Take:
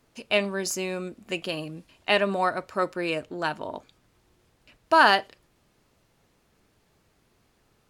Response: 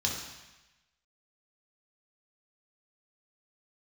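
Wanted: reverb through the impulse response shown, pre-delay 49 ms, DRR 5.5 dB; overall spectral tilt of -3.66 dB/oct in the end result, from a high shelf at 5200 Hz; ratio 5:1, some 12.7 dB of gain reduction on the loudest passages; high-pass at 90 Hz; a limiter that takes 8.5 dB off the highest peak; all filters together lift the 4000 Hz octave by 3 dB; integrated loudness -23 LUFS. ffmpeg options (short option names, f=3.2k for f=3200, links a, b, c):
-filter_complex "[0:a]highpass=90,equalizer=f=4k:t=o:g=7.5,highshelf=f=5.2k:g=-7.5,acompressor=threshold=-26dB:ratio=5,alimiter=limit=-20.5dB:level=0:latency=1,asplit=2[a][b];[1:a]atrim=start_sample=2205,adelay=49[c];[b][c]afir=irnorm=-1:irlink=0,volume=-12dB[d];[a][d]amix=inputs=2:normalize=0,volume=10dB"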